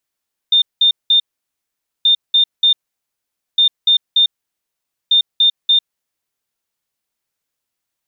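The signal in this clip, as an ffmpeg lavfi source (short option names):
-f lavfi -i "aevalsrc='0.398*sin(2*PI*3620*t)*clip(min(mod(mod(t,1.53),0.29),0.1-mod(mod(t,1.53),0.29))/0.005,0,1)*lt(mod(t,1.53),0.87)':d=6.12:s=44100"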